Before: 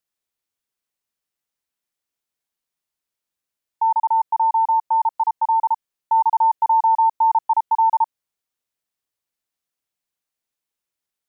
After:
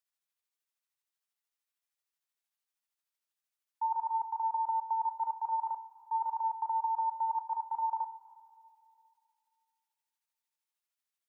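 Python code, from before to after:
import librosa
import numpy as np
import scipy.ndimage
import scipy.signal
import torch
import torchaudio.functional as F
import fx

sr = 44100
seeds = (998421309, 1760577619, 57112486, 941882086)

y = scipy.signal.sosfilt(scipy.signal.butter(2, 740.0, 'highpass', fs=sr, output='sos'), x)
y = fx.level_steps(y, sr, step_db=15)
y = y * (1.0 - 0.4 / 2.0 + 0.4 / 2.0 * np.cos(2.0 * np.pi * 13.0 * (np.arange(len(y)) / sr)))
y = fx.rev_double_slope(y, sr, seeds[0], early_s=0.21, late_s=2.5, knee_db=-17, drr_db=6.5)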